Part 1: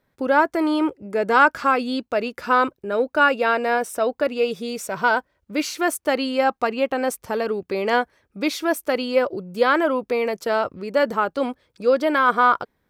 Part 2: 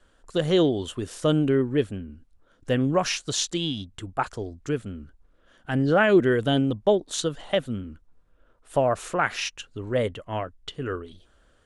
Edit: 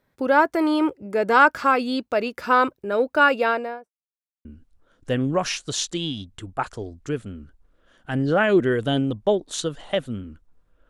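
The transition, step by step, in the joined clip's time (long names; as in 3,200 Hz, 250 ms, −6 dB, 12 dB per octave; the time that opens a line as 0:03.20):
part 1
0:03.38–0:03.92: fade out and dull
0:03.92–0:04.45: silence
0:04.45: continue with part 2 from 0:02.05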